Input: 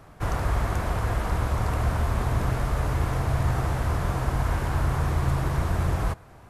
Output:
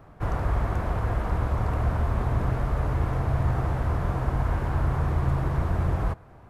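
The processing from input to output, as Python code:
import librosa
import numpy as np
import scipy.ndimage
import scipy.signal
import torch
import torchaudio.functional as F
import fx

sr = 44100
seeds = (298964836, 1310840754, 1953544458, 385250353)

y = fx.peak_eq(x, sr, hz=9500.0, db=-13.0, octaves=2.9)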